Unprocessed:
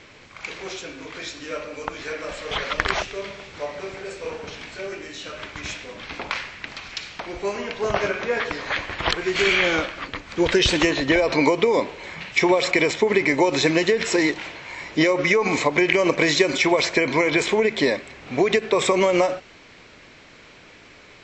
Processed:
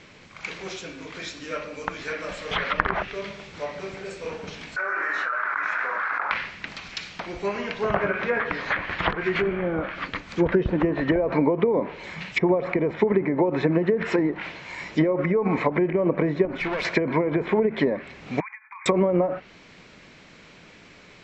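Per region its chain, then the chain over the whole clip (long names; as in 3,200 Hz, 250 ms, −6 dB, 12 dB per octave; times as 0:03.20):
0:04.76–0:06.31: high-pass filter 890 Hz + high shelf with overshoot 2,100 Hz −13.5 dB, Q 3 + envelope flattener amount 100%
0:13.12–0:14.02: high-pass filter 55 Hz + high-shelf EQ 2,400 Hz −3.5 dB
0:16.45–0:16.85: high-shelf EQ 5,700 Hz −10.5 dB + tube saturation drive 23 dB, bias 0.75
0:18.40–0:18.86: downward expander −24 dBFS + linear-phase brick-wall band-pass 810–2,500 Hz + downward compressor 8 to 1, threshold −35 dBFS
whole clip: dynamic equaliser 1,600 Hz, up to +6 dB, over −36 dBFS, Q 0.99; treble cut that deepens with the level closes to 640 Hz, closed at −13.5 dBFS; parametric band 180 Hz +8 dB 0.63 octaves; level −2.5 dB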